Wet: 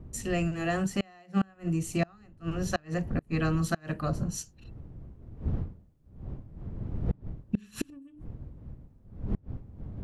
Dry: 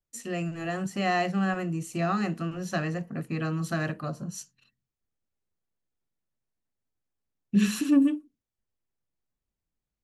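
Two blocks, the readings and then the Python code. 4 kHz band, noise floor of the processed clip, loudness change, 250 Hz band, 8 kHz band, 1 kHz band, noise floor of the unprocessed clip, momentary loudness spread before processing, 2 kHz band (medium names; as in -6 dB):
-3.5 dB, -59 dBFS, -4.5 dB, -4.5 dB, +0.5 dB, -5.5 dB, under -85 dBFS, 12 LU, -4.0 dB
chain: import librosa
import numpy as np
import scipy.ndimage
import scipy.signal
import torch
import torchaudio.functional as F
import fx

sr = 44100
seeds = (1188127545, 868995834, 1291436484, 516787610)

y = fx.dmg_wind(x, sr, seeds[0], corner_hz=120.0, level_db=-38.0)
y = fx.gate_flip(y, sr, shuts_db=-19.0, range_db=-31)
y = y * librosa.db_to_amplitude(2.5)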